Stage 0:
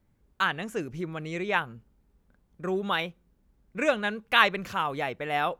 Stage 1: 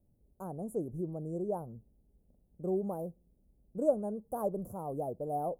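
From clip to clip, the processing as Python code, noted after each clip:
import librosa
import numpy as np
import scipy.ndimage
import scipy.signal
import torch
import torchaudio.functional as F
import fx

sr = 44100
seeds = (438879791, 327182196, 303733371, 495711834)

y = scipy.signal.sosfilt(scipy.signal.ellip(3, 1.0, 60, [660.0, 9500.0], 'bandstop', fs=sr, output='sos'), x)
y = y * 10.0 ** (-2.0 / 20.0)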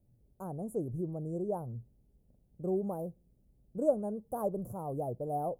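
y = fx.peak_eq(x, sr, hz=120.0, db=9.5, octaves=0.38)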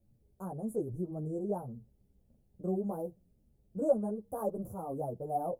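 y = fx.ensemble(x, sr)
y = y * 10.0 ** (3.0 / 20.0)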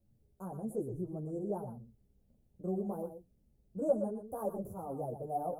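y = x + 10.0 ** (-9.5 / 20.0) * np.pad(x, (int(119 * sr / 1000.0), 0))[:len(x)]
y = y * 10.0 ** (-2.5 / 20.0)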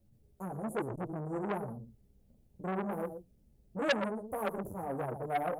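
y = fx.transformer_sat(x, sr, knee_hz=2500.0)
y = y * 10.0 ** (5.0 / 20.0)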